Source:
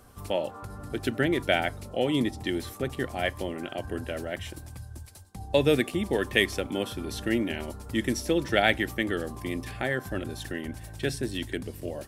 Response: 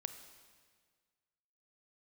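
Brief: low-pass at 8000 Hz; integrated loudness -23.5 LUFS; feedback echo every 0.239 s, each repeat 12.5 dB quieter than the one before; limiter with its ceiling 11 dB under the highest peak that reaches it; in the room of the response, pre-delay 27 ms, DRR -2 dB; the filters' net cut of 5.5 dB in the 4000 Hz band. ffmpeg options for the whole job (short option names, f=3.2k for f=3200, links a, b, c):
-filter_complex "[0:a]lowpass=8k,equalizer=f=4k:t=o:g=-7.5,alimiter=limit=-18dB:level=0:latency=1,aecho=1:1:239|478|717:0.237|0.0569|0.0137,asplit=2[a][b];[1:a]atrim=start_sample=2205,adelay=27[c];[b][c]afir=irnorm=-1:irlink=0,volume=4dB[d];[a][d]amix=inputs=2:normalize=0,volume=4.5dB"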